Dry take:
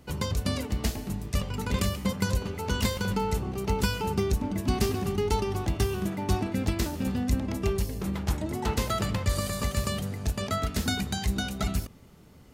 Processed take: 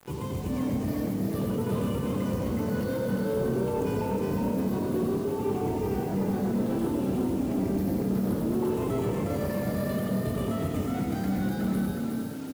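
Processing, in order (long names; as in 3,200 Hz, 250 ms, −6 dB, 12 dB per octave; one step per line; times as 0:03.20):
rippled gain that drifts along the octave scale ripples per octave 0.66, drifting −0.58 Hz, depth 11 dB
high-pass filter 95 Hz 24 dB per octave
mains-hum notches 50/100/150 Hz
compressor whose output falls as the input rises −29 dBFS, ratio −0.5
convolution reverb RT60 0.55 s, pre-delay 83 ms, DRR 1.5 dB
gain into a clipping stage and back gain 25 dB
drawn EQ curve 440 Hz 0 dB, 6,800 Hz −21 dB, 11,000 Hz −9 dB
echo with shifted repeats 364 ms, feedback 50%, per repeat +36 Hz, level −3 dB
bit reduction 8 bits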